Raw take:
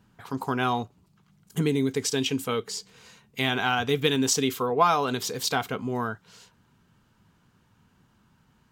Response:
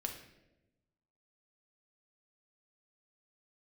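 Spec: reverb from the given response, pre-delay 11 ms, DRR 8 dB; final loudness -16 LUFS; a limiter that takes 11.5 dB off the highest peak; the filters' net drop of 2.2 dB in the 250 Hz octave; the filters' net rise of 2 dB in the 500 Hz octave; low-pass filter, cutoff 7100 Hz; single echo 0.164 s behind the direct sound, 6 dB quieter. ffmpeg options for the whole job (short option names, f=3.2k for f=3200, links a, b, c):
-filter_complex "[0:a]lowpass=7.1k,equalizer=f=250:t=o:g=-3.5,equalizer=f=500:t=o:g=3.5,alimiter=limit=-18dB:level=0:latency=1,aecho=1:1:164:0.501,asplit=2[a][b];[1:a]atrim=start_sample=2205,adelay=11[c];[b][c]afir=irnorm=-1:irlink=0,volume=-8dB[d];[a][d]amix=inputs=2:normalize=0,volume=12.5dB"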